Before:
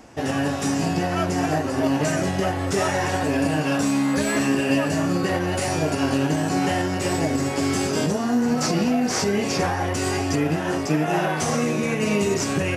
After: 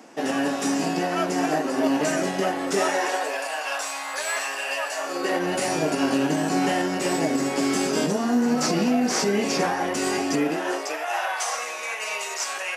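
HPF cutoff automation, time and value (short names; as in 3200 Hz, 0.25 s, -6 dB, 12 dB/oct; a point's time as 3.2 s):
HPF 24 dB/oct
2.77 s 210 Hz
3.47 s 670 Hz
4.94 s 670 Hz
5.48 s 180 Hz
10.36 s 180 Hz
11.09 s 710 Hz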